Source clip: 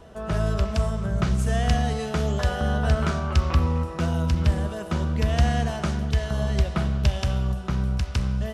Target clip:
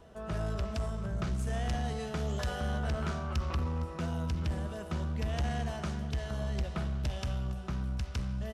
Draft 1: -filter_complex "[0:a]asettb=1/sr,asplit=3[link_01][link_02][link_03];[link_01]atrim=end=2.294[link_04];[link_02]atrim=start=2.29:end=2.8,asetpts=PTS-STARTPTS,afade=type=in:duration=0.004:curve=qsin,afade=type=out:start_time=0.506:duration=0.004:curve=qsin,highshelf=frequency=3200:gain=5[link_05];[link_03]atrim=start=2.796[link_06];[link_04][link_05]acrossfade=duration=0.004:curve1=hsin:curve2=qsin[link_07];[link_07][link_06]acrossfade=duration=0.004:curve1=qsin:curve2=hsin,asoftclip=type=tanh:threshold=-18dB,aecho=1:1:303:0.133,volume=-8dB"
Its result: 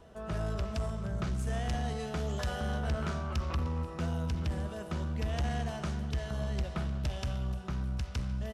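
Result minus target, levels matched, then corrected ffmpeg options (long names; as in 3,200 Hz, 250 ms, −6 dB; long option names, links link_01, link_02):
echo 156 ms early
-filter_complex "[0:a]asettb=1/sr,asplit=3[link_01][link_02][link_03];[link_01]atrim=end=2.294[link_04];[link_02]atrim=start=2.29:end=2.8,asetpts=PTS-STARTPTS,afade=type=in:duration=0.004:curve=qsin,afade=type=out:start_time=0.506:duration=0.004:curve=qsin,highshelf=frequency=3200:gain=5[link_05];[link_03]atrim=start=2.796[link_06];[link_04][link_05]acrossfade=duration=0.004:curve1=hsin:curve2=qsin[link_07];[link_07][link_06]acrossfade=duration=0.004:curve1=qsin:curve2=hsin,asoftclip=type=tanh:threshold=-18dB,aecho=1:1:459:0.133,volume=-8dB"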